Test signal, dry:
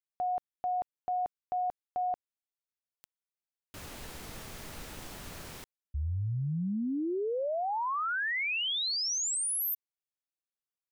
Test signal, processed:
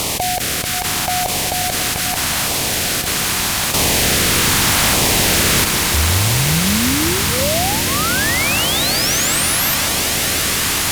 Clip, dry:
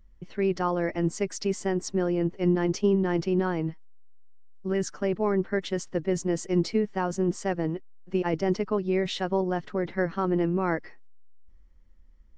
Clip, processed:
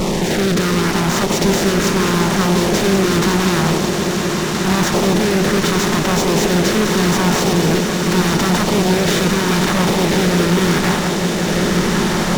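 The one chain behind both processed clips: spectral levelling over time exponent 0.2; bass shelf 110 Hz +8 dB; fuzz box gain 28 dB, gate -34 dBFS; LFO notch saw down 0.81 Hz 370–1700 Hz; on a send: echo with a slow build-up 180 ms, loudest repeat 5, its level -13 dB

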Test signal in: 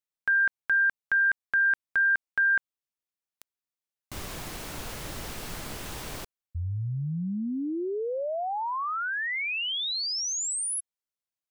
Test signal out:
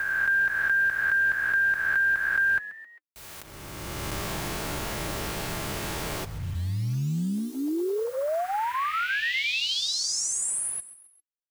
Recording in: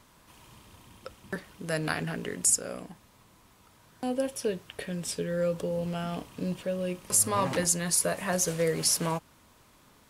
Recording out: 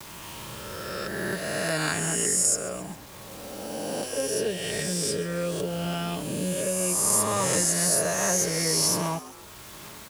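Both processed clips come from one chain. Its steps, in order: reverse spectral sustain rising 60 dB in 1.61 s; gate with hold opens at -48 dBFS; in parallel at 0 dB: compression 5:1, threshold -38 dBFS; on the sum: bit crusher 8-bit; comb of notches 250 Hz; on a send: frequency-shifting echo 133 ms, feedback 40%, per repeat +96 Hz, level -17 dB; on the sum: three bands compressed up and down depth 40%; trim -1 dB

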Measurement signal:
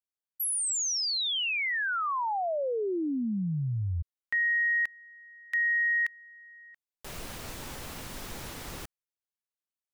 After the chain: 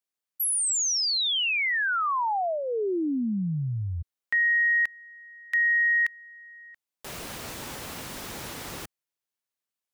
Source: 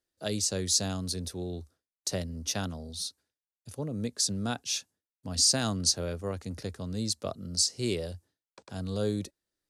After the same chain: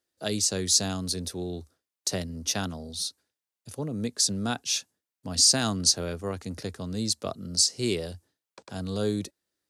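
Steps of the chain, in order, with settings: high-pass 120 Hz 6 dB/octave; dynamic bell 550 Hz, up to -5 dB, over -48 dBFS, Q 4.7; trim +4 dB

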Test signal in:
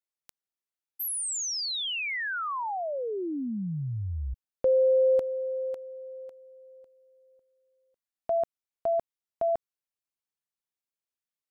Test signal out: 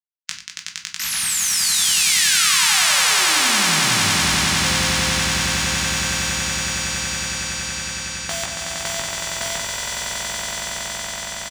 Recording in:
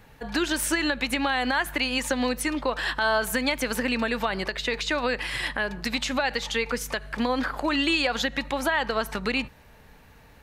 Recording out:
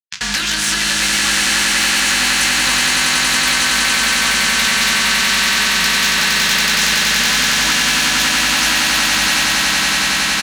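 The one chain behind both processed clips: bit crusher 7-bit; FFT filter 190 Hz 0 dB, 450 Hz -28 dB, 1.7 kHz +10 dB, 6.4 kHz +11 dB, 14 kHz -23 dB; saturation -10.5 dBFS; high-pass 67 Hz; doubling 19 ms -3 dB; simulated room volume 210 m³, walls furnished, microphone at 1.1 m; compression 6:1, threshold -27 dBFS; on a send: echo with a slow build-up 93 ms, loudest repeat 8, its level -4 dB; on the sum: spectrum-flattening compressor 2:1; trim +7 dB

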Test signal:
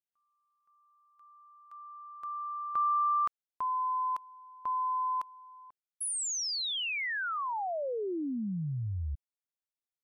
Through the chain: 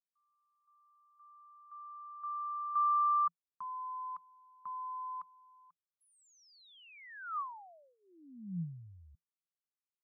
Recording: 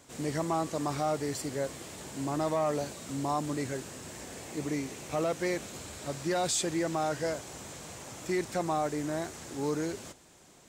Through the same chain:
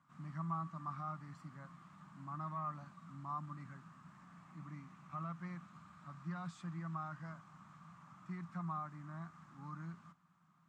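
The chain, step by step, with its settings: two resonant band-passes 450 Hz, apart 2.8 oct; trim -1 dB

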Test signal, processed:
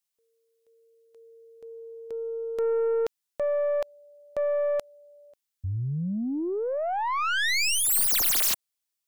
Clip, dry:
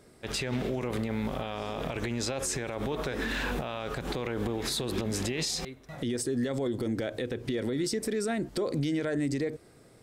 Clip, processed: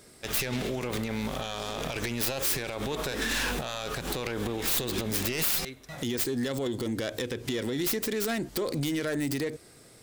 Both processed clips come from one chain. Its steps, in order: tracing distortion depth 0.3 ms; treble shelf 2.2 kHz +11 dB; saturation -20.5 dBFS

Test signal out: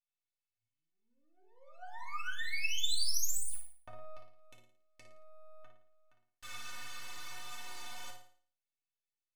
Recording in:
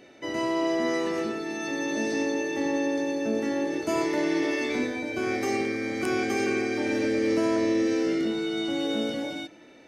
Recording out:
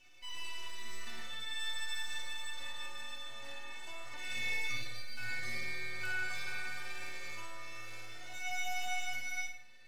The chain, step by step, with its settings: low-pass 4.2 kHz 12 dB/octave; LFO high-pass saw down 0.24 Hz 720–2600 Hz; bass shelf 500 Hz +10 dB; compression 6:1, threshold -27 dBFS; differentiator; half-wave rectifier; inharmonic resonator 110 Hz, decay 0.24 s, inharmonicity 0.03; on a send: flutter echo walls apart 9.6 m, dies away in 0.47 s; on the sum: FDN reverb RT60 0.36 s, low-frequency decay 1.3×, high-frequency decay 0.75×, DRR 0.5 dB; trim +10 dB

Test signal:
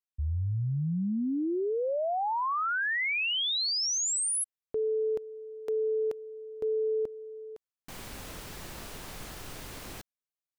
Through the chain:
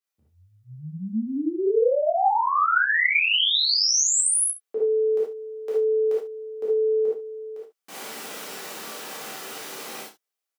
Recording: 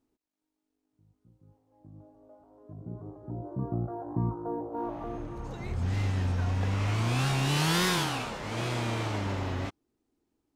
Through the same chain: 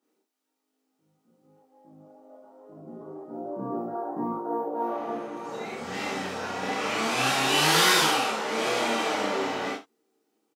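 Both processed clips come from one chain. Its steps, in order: high-pass 260 Hz 24 dB/octave; on a send: early reflections 31 ms -8 dB, 69 ms -14 dB; on the sum: gated-style reverb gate 100 ms flat, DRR -6.5 dB

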